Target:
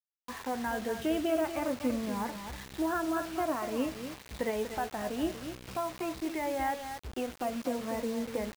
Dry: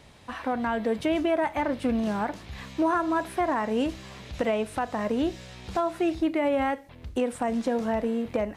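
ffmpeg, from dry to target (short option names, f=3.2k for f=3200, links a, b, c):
-filter_complex "[0:a]afftfilt=real='re*pow(10,8/40*sin(2*PI*(0.95*log(max(b,1)*sr/1024/100)/log(2)-(-0.5)*(pts-256)/sr)))':imag='im*pow(10,8/40*sin(2*PI*(0.95*log(max(b,1)*sr/1024/100)/log(2)-(-0.5)*(pts-256)/sr)))':win_size=1024:overlap=0.75,lowpass=4.6k,asplit=2[a][b];[b]adelay=16,volume=-12dB[c];[a][c]amix=inputs=2:normalize=0,aecho=1:1:241:0.335,acrusher=bits=5:mix=0:aa=0.000001,volume=-8dB"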